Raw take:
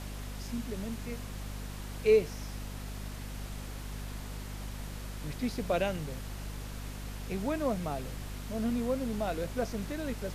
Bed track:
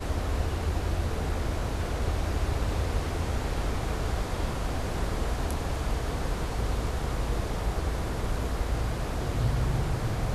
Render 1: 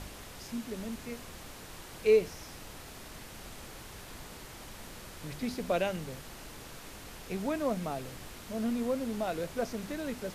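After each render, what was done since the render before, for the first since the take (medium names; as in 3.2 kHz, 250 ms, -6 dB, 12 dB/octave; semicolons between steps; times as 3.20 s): de-hum 50 Hz, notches 5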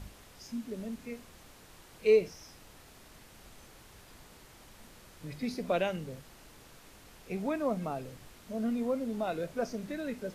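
noise print and reduce 8 dB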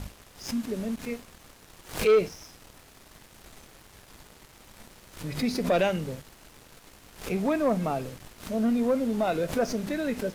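waveshaping leveller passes 2; swell ahead of each attack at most 140 dB/s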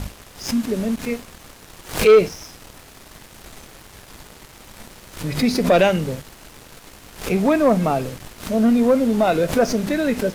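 trim +9 dB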